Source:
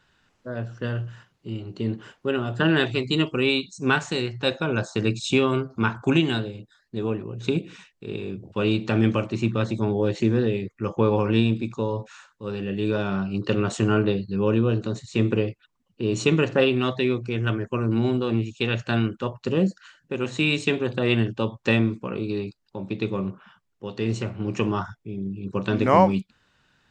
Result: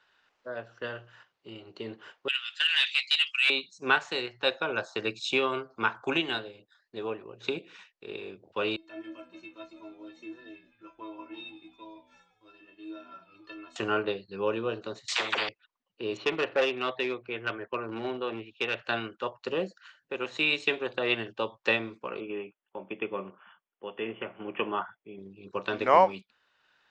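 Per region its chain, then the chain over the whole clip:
2.28–3.50 s: inverse Chebyshev high-pass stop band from 520 Hz, stop band 70 dB + overdrive pedal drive 19 dB, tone 6.3 kHz, clips at -12.5 dBFS
8.76–13.76 s: inharmonic resonator 320 Hz, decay 0.27 s, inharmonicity 0.008 + frequency-shifting echo 165 ms, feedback 58%, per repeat -72 Hz, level -14.5 dB
15.08–15.49 s: phase dispersion lows, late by 52 ms, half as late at 510 Hz + spectrum-flattening compressor 4:1
16.17–18.85 s: low-pass 3.5 kHz 24 dB/octave + peaking EQ 150 Hz -3 dB 1.1 oct + hard clipper -16 dBFS
22.20–25.19 s: brick-wall FIR low-pass 3.5 kHz + resonant low shelf 120 Hz -8.5 dB, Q 1.5
whole clip: three-band isolator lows -20 dB, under 410 Hz, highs -19 dB, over 5.8 kHz; transient shaper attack +1 dB, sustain -3 dB; trim -1.5 dB

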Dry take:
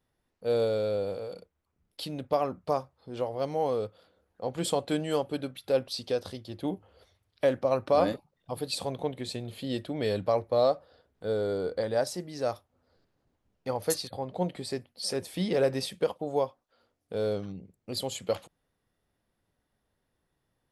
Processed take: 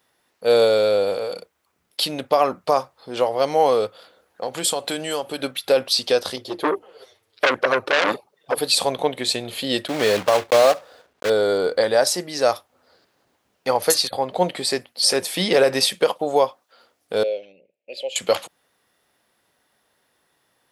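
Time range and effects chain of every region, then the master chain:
4.43–5.42 s: treble shelf 5.2 kHz +6 dB + compression 2.5:1, threshold -36 dBFS
6.36–8.58 s: touch-sensitive flanger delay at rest 9.4 ms, full sweep at -19 dBFS + peaking EQ 420 Hz +11 dB 0.8 oct + transformer saturation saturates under 2.6 kHz
9.88–11.30 s: block-companded coder 3-bit + low-pass 2.7 kHz 6 dB/octave
17.23–18.16 s: two resonant band-passes 1.2 kHz, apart 2.2 oct + tape noise reduction on one side only decoder only
whole clip: high-pass 860 Hz 6 dB/octave; loudness maximiser +22 dB; trim -5 dB

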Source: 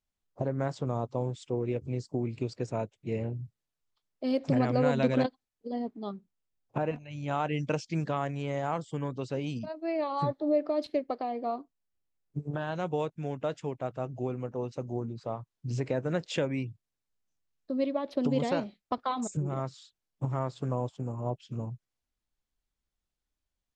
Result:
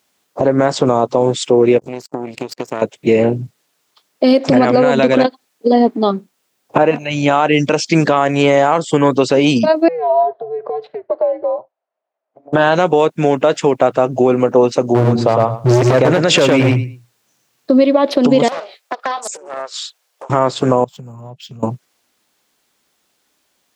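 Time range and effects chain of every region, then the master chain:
1.78–2.82 s: treble shelf 5.7 kHz +7.5 dB + compression 4:1, threshold -40 dBFS + power-law waveshaper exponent 2
9.88–12.53 s: compression 4:1, threshold -34 dBFS + ladder band-pass 870 Hz, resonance 75% + frequency shift -160 Hz
14.94–17.79 s: peaking EQ 120 Hz +14 dB 0.33 oct + feedback delay 107 ms, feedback 18%, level -3.5 dB + hard clipper -24 dBFS
18.48–20.30 s: compression 4:1, threshold -46 dBFS + steep high-pass 460 Hz + loudspeaker Doppler distortion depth 0.58 ms
20.84–21.63 s: FFT filter 170 Hz 0 dB, 310 Hz -20 dB, 3.6 kHz -7 dB + compression 12:1, threshold -46 dBFS + decimation joined by straight lines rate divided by 2×
whole clip: high-pass 270 Hz 12 dB/octave; compression, threshold -33 dBFS; loudness maximiser +28.5 dB; trim -1 dB

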